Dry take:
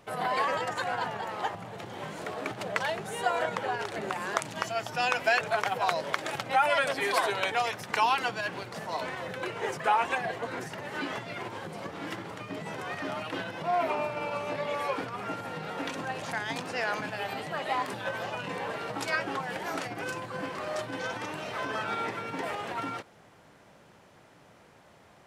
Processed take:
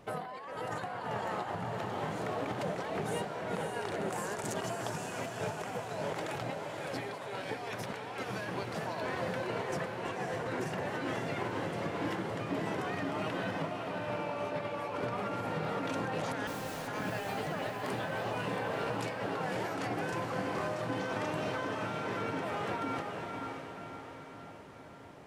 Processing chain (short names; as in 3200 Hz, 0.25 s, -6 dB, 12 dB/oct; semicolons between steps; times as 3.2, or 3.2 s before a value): 4.1–4.54 resonant high shelf 5000 Hz +11.5 dB, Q 1.5; negative-ratio compressor -36 dBFS, ratio -1; 16.47–16.88 wrapped overs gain 37.5 dB; tilt shelf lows +3.5 dB; diffused feedback echo 0.556 s, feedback 53%, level -4 dB; gain -3.5 dB